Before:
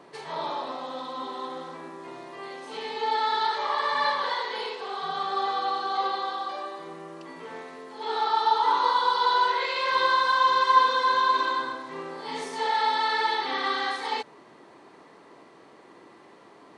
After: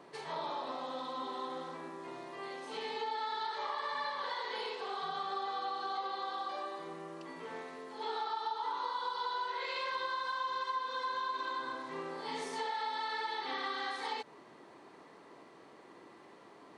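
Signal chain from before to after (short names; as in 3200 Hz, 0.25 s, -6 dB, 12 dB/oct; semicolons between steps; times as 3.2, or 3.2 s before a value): compressor 6:1, threshold -30 dBFS, peak gain reduction 15.5 dB; gain -4.5 dB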